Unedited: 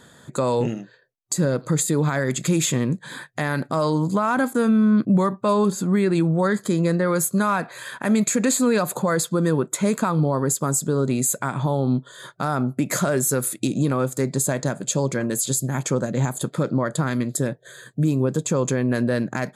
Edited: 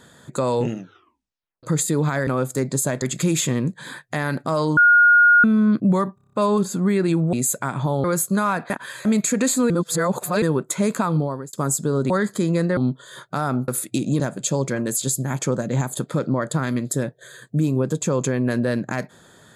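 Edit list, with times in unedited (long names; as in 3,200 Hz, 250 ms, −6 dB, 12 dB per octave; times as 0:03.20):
0:00.78: tape stop 0.85 s
0:04.02–0:04.69: beep over 1,430 Hz −9.5 dBFS
0:05.40: stutter 0.03 s, 7 plays
0:06.40–0:07.07: swap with 0:11.13–0:11.84
0:07.73–0:08.08: reverse
0:08.73–0:09.45: reverse
0:10.18–0:10.56: fade out
0:12.75–0:13.37: remove
0:13.89–0:14.64: move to 0:02.27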